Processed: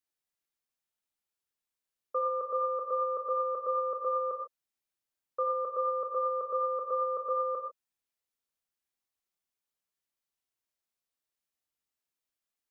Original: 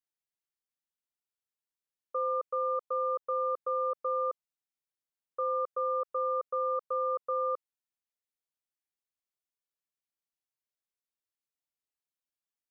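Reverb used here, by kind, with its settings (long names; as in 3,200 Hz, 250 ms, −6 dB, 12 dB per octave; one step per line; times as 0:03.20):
reverb whose tail is shaped and stops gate 170 ms flat, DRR 3.5 dB
level +1.5 dB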